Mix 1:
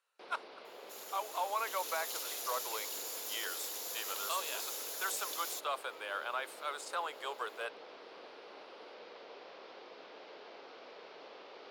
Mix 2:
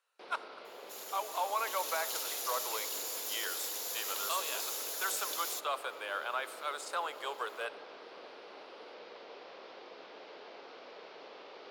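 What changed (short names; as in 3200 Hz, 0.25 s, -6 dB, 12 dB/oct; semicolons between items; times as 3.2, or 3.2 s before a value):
speech: send on; first sound: send on; second sound +3.0 dB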